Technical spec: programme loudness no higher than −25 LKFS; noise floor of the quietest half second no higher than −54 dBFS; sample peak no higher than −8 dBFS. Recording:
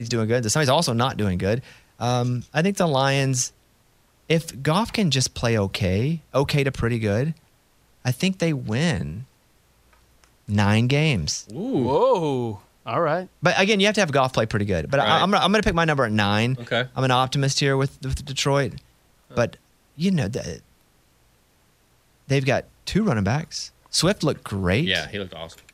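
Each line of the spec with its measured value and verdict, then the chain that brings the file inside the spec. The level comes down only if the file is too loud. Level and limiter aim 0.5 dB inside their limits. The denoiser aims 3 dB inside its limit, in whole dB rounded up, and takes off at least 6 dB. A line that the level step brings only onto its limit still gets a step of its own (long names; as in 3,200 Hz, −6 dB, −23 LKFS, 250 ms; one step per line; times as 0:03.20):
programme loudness −22.0 LKFS: out of spec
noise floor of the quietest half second −61 dBFS: in spec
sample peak −4.0 dBFS: out of spec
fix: level −3.5 dB
brickwall limiter −8.5 dBFS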